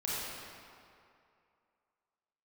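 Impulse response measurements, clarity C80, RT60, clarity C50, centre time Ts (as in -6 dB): -2.5 dB, 2.5 s, -4.5 dB, 165 ms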